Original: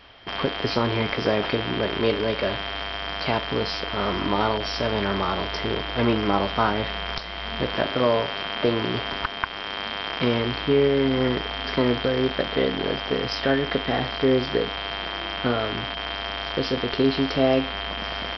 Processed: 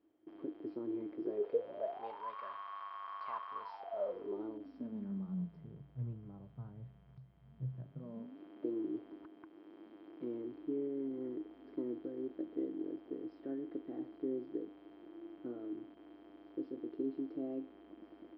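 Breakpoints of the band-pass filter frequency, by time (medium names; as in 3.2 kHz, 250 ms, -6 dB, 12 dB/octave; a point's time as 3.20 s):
band-pass filter, Q 19
1.19 s 320 Hz
2.34 s 1.1 kHz
3.59 s 1.1 kHz
4.45 s 320 Hz
5.94 s 130 Hz
7.87 s 130 Hz
8.44 s 320 Hz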